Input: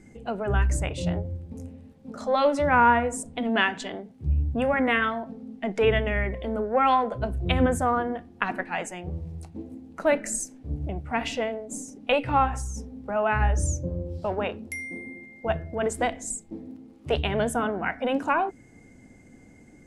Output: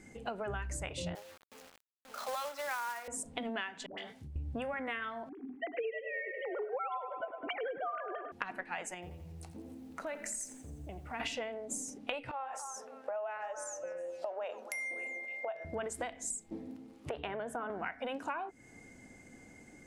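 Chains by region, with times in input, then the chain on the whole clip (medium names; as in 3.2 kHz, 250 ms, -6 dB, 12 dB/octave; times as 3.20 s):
1.15–3.08 s: band-pass 800–4400 Hz + companded quantiser 4-bit
3.86–4.36 s: treble shelf 2 kHz +9 dB + phase dispersion highs, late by 120 ms, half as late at 700 Hz + compression 8:1, threshold -38 dBFS
5.29–8.32 s: formants replaced by sine waves + peaking EQ 200 Hz -8.5 dB 0.4 oct + feedback echo behind a low-pass 102 ms, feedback 52%, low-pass 2.5 kHz, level -10.5 dB
8.94–11.20 s: compression 3:1, threshold -40 dBFS + bit-crushed delay 85 ms, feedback 55%, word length 10-bit, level -14 dB
12.31–15.65 s: compression 5:1, threshold -36 dBFS + resonant high-pass 590 Hz, resonance Q 3.9 + repeats whose band climbs or falls 282 ms, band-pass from 1.2 kHz, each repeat 0.7 oct, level -10.5 dB
17.09–17.70 s: three-band isolator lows -12 dB, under 190 Hz, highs -14 dB, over 2 kHz + compression 3:1, threshold -26 dBFS
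whole clip: bass shelf 440 Hz -9.5 dB; compression 12:1, threshold -37 dBFS; trim +2 dB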